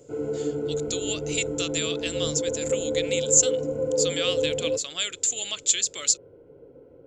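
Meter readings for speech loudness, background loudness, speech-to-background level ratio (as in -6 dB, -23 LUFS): -25.5 LUFS, -28.0 LUFS, 2.5 dB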